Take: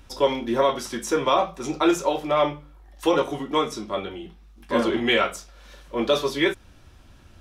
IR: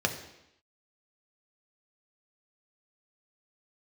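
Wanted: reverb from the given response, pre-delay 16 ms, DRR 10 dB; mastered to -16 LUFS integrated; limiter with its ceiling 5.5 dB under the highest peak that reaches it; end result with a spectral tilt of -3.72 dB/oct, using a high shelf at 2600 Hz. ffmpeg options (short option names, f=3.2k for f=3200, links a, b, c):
-filter_complex "[0:a]highshelf=f=2.6k:g=-6,alimiter=limit=-14dB:level=0:latency=1,asplit=2[a][b];[1:a]atrim=start_sample=2205,adelay=16[c];[b][c]afir=irnorm=-1:irlink=0,volume=-19.5dB[d];[a][d]amix=inputs=2:normalize=0,volume=10.5dB"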